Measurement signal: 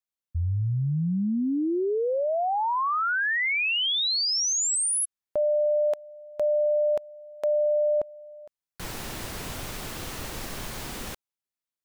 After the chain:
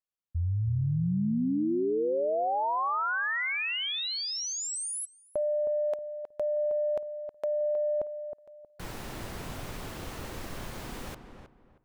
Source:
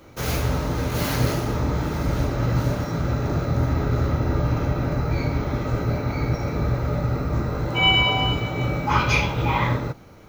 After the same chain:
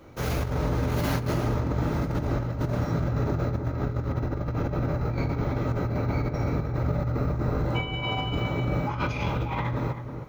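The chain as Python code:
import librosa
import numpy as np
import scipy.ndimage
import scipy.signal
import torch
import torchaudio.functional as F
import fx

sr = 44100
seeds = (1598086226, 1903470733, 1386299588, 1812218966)

y = fx.high_shelf(x, sr, hz=2400.0, db=-7.0)
y = fx.over_compress(y, sr, threshold_db=-24.0, ratio=-0.5)
y = fx.echo_filtered(y, sr, ms=316, feedback_pct=27, hz=1700.0, wet_db=-8.0)
y = y * librosa.db_to_amplitude(-3.0)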